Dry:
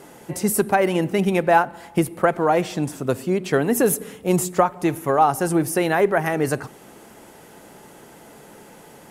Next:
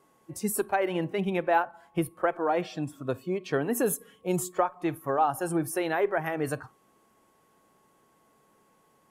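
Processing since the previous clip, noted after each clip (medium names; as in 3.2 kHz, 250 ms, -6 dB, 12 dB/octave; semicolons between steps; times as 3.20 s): whistle 1.1 kHz -46 dBFS; spectral noise reduction 13 dB; trim -8 dB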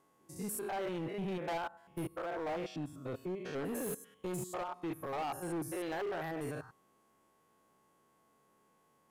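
spectrogram pixelated in time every 100 ms; hard clipper -28.5 dBFS, distortion -10 dB; trim -5.5 dB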